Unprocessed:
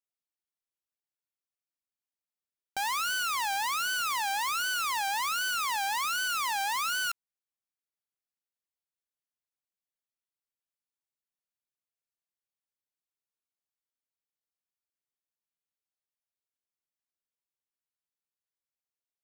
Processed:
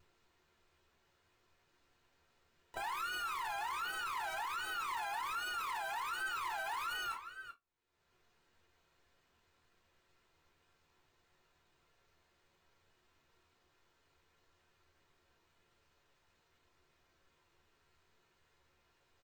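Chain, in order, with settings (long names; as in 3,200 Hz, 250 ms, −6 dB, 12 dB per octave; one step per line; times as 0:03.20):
dynamic equaliser 400 Hz, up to +6 dB, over −55 dBFS, Q 1.6
bad sample-rate conversion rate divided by 4×, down filtered, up hold
pitch-shifted copies added −3 semitones −11 dB, +4 semitones −16 dB
high-shelf EQ 2,400 Hz −8.5 dB
upward compression, threshold −52 dBFS
slap from a distant wall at 67 metres, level −16 dB
pitch vibrato 1.8 Hz 48 cents
convolution reverb RT60 0.15 s, pre-delay 3 ms, DRR −2.5 dB
brickwall limiter −26 dBFS, peak gain reduction 11 dB
level −6 dB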